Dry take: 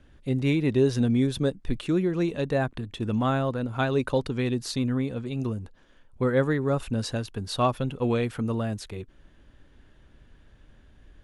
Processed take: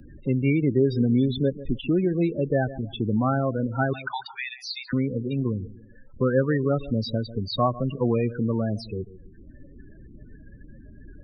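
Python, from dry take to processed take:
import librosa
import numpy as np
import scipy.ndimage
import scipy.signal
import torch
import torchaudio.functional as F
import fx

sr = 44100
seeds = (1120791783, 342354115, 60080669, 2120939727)

p1 = fx.brickwall_highpass(x, sr, low_hz=740.0, at=(3.93, 4.93))
p2 = p1 + fx.echo_feedback(p1, sr, ms=144, feedback_pct=31, wet_db=-17, dry=0)
p3 = fx.spec_topn(p2, sr, count=16)
p4 = fx.high_shelf(p3, sr, hz=4100.0, db=9.5)
p5 = fx.wow_flutter(p4, sr, seeds[0], rate_hz=2.1, depth_cents=23.0)
p6 = fx.spec_box(p5, sr, start_s=2.16, length_s=0.32, low_hz=940.0, high_hz=2000.0, gain_db=-26)
p7 = fx.band_squash(p6, sr, depth_pct=40)
y = p7 * librosa.db_to_amplitude(2.0)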